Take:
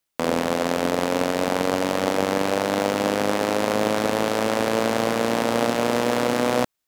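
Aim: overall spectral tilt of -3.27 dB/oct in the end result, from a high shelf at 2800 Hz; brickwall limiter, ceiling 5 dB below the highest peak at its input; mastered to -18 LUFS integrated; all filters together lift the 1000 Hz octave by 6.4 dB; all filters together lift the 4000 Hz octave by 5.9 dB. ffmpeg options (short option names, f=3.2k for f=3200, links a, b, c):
-af "equalizer=f=1k:t=o:g=7.5,highshelf=f=2.8k:g=5,equalizer=f=4k:t=o:g=3,volume=3.5dB,alimiter=limit=-2dB:level=0:latency=1"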